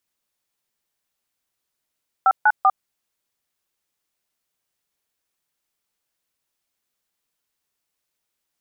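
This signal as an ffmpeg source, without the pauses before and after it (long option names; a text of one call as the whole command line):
ffmpeg -f lavfi -i "aevalsrc='0.2*clip(min(mod(t,0.194),0.051-mod(t,0.194))/0.002,0,1)*(eq(floor(t/0.194),0)*(sin(2*PI*770*mod(t,0.194))+sin(2*PI*1336*mod(t,0.194)))+eq(floor(t/0.194),1)*(sin(2*PI*852*mod(t,0.194))+sin(2*PI*1477*mod(t,0.194)))+eq(floor(t/0.194),2)*(sin(2*PI*770*mod(t,0.194))+sin(2*PI*1209*mod(t,0.194))))':duration=0.582:sample_rate=44100" out.wav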